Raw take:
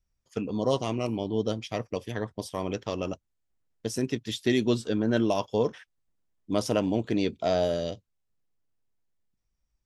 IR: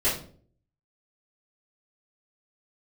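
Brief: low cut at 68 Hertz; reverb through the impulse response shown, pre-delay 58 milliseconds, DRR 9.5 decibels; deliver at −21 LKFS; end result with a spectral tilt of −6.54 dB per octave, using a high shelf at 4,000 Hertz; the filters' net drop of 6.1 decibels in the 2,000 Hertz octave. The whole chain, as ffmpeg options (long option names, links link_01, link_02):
-filter_complex "[0:a]highpass=68,equalizer=frequency=2000:width_type=o:gain=-7,highshelf=frequency=4000:gain=-4.5,asplit=2[link_01][link_02];[1:a]atrim=start_sample=2205,adelay=58[link_03];[link_02][link_03]afir=irnorm=-1:irlink=0,volume=-21.5dB[link_04];[link_01][link_04]amix=inputs=2:normalize=0,volume=8dB"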